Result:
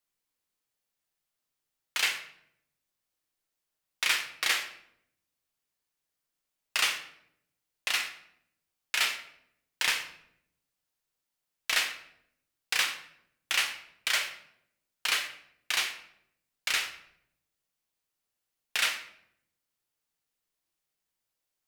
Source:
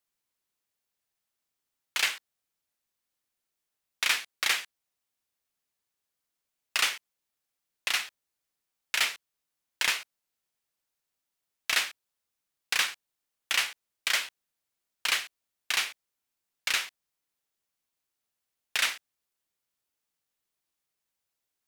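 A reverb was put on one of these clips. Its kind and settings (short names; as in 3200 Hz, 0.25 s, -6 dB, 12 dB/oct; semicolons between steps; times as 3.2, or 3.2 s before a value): shoebox room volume 160 m³, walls mixed, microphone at 0.54 m; gain -1.5 dB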